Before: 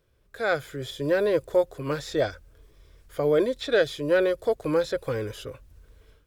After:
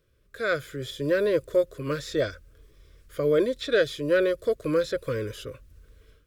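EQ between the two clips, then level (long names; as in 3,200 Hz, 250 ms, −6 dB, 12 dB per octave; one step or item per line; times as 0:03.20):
Butterworth band-reject 810 Hz, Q 1.9
0.0 dB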